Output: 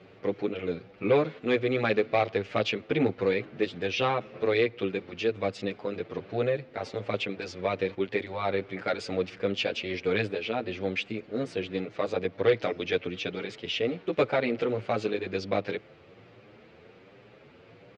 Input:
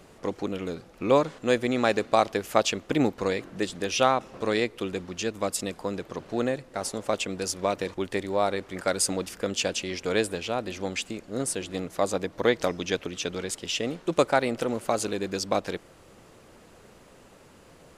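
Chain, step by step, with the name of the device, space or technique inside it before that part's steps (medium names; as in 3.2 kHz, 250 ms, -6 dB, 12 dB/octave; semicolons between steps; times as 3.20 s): barber-pole flanger into a guitar amplifier (endless flanger 8.5 ms +1.3 Hz; saturation -18 dBFS, distortion -15 dB; cabinet simulation 96–4100 Hz, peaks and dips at 110 Hz +8 dB, 440 Hz +5 dB, 990 Hz -5 dB, 2.3 kHz +6 dB); trim +1.5 dB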